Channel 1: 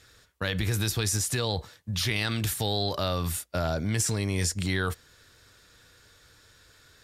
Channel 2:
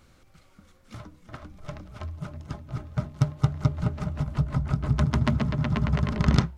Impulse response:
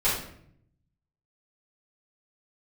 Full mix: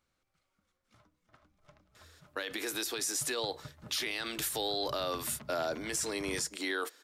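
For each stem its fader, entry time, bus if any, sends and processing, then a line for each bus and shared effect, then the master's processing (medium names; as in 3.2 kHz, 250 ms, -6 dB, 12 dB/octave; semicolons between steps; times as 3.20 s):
-2.0 dB, 1.95 s, no send, steep high-pass 270 Hz 48 dB/octave
-18.0 dB, 0.00 s, no send, bass shelf 360 Hz -9.5 dB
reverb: none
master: peak limiter -23.5 dBFS, peak gain reduction 7.5 dB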